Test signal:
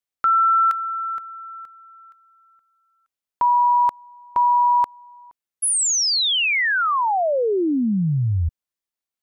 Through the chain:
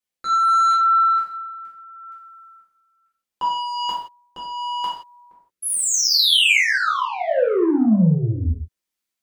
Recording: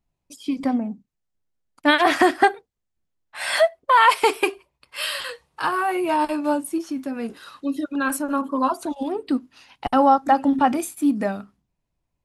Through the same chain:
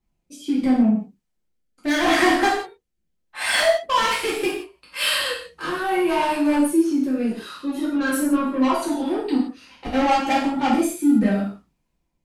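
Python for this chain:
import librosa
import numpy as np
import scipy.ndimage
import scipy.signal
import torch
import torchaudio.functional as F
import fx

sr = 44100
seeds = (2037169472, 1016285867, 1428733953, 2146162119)

y = 10.0 ** (-20.5 / 20.0) * np.tanh(x / 10.0 ** (-20.5 / 20.0))
y = fx.rotary(y, sr, hz=0.75)
y = fx.rev_gated(y, sr, seeds[0], gate_ms=200, shape='falling', drr_db=-7.0)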